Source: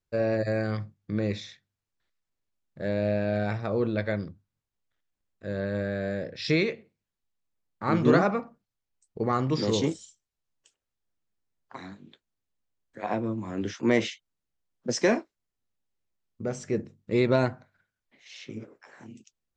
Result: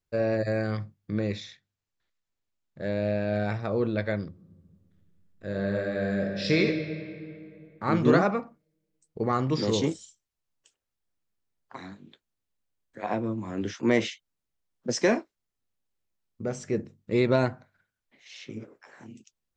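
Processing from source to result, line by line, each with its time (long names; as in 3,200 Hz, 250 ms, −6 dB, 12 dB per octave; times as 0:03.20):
0:01.22–0:03.31: elliptic low-pass filter 7,500 Hz
0:04.28–0:06.58: thrown reverb, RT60 2.5 s, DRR 1.5 dB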